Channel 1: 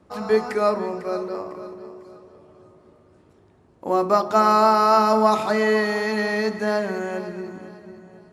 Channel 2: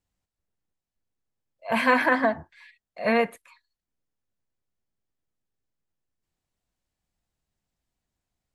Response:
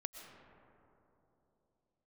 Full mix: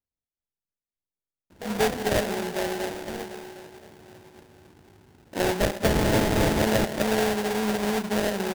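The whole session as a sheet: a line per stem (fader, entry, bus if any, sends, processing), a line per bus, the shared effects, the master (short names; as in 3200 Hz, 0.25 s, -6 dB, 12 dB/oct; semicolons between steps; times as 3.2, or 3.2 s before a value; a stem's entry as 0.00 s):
+1.5 dB, 1.50 s, send -13 dB, Wiener smoothing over 41 samples; compressor 2:1, threshold -27 dBFS, peak gain reduction 8 dB
-15.0 dB, 0.00 s, no send, dry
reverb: on, pre-delay 80 ms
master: sample-rate reducer 1200 Hz, jitter 20%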